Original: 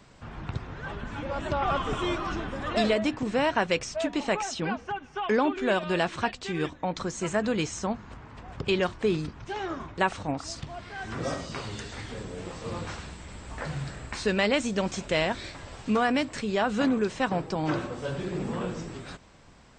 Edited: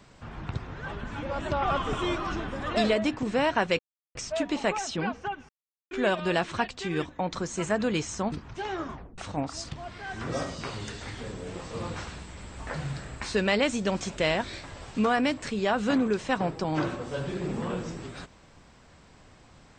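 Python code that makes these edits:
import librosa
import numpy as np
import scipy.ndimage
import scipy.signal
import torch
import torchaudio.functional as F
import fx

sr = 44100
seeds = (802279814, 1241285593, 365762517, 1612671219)

y = fx.edit(x, sr, fx.insert_silence(at_s=3.79, length_s=0.36),
    fx.silence(start_s=5.13, length_s=0.42),
    fx.cut(start_s=7.96, length_s=1.27),
    fx.tape_stop(start_s=9.84, length_s=0.25), tone=tone)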